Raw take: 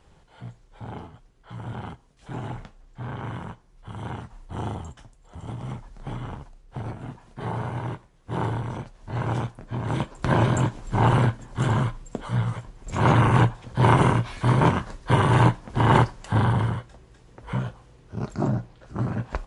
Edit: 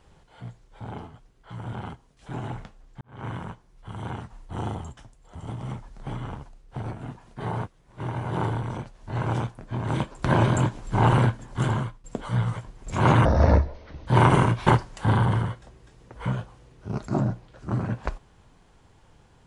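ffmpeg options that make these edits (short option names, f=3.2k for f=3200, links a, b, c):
-filter_complex "[0:a]asplit=8[a][b][c][d][e][f][g][h];[a]atrim=end=3.01,asetpts=PTS-STARTPTS,afade=t=out:st=3.006:d=0.004:c=hsin[i];[b]atrim=start=3.01:end=7.642,asetpts=PTS-STARTPTS,afade=t=in:d=0.25:c=qua[j];[c]atrim=start=7.638:end=8.312,asetpts=PTS-STARTPTS,areverse[k];[d]atrim=start=8.308:end=12.04,asetpts=PTS-STARTPTS,afade=t=out:st=3.282:d=0.45:silence=0.125893[l];[e]atrim=start=12.04:end=13.254,asetpts=PTS-STARTPTS,afade=t=in:d=0.004:c=hsin:silence=0.125893[m];[f]atrim=start=13.25:end=13.74,asetpts=PTS-STARTPTS,asetrate=26460,aresample=44100[n];[g]atrim=start=13.736:end=14.342[o];[h]atrim=start=15.938[p];[i][j]concat=n=2:v=0:a=1[q];[q][k]acrossfade=d=0.004:c1=hsin:c2=hsin[r];[l][m]concat=n=2:v=0:a=1[s];[r][s]acrossfade=d=0.004:c1=hsin:c2=hsin[t];[t][n]acrossfade=d=0.004:c1=hsin:c2=hsin[u];[u][o]acrossfade=d=0.004:c1=hsin:c2=hsin[v];[v][p]acrossfade=d=0.004:c1=hsin:c2=hsin"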